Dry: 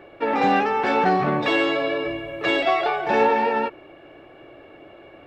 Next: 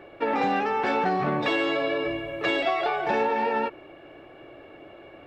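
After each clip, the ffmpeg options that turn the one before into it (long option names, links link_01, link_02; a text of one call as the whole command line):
ffmpeg -i in.wav -af "acompressor=threshold=-20dB:ratio=6,volume=-1dB" out.wav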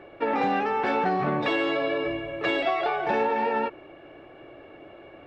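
ffmpeg -i in.wav -af "highshelf=frequency=6000:gain=-9" out.wav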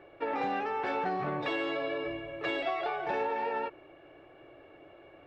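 ffmpeg -i in.wav -af "equalizer=frequency=220:width_type=o:width=0.3:gain=-10.5,volume=-7dB" out.wav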